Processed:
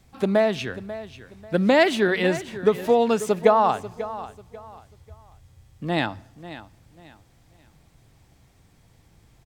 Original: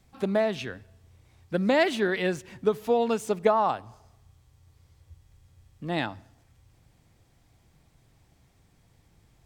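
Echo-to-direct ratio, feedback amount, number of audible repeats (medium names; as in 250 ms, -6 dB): -14.0 dB, 29%, 2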